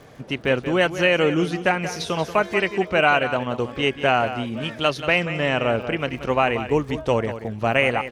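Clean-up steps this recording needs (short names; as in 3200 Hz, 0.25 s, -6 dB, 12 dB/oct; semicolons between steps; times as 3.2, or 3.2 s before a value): de-click; inverse comb 0.183 s -11.5 dB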